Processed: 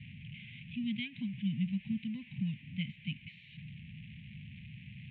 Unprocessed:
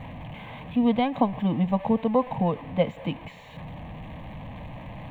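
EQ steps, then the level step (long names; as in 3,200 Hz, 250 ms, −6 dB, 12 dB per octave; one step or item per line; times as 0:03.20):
elliptic band-stop filter 190–2,400 Hz, stop band 40 dB
loudspeaker in its box 140–3,200 Hz, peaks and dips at 180 Hz −6 dB, 340 Hz −8 dB, 480 Hz −9 dB, 890 Hz −8 dB
−1.0 dB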